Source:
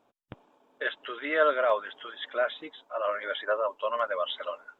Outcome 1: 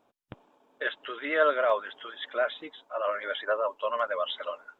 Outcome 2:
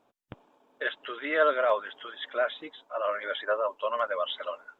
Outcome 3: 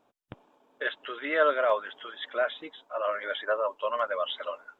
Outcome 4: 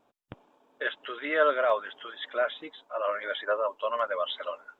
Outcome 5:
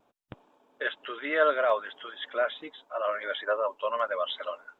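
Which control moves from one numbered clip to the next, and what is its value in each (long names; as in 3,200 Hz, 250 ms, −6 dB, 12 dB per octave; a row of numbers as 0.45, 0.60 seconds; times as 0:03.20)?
pitch vibrato, speed: 10, 15, 4.6, 1.9, 0.73 Hertz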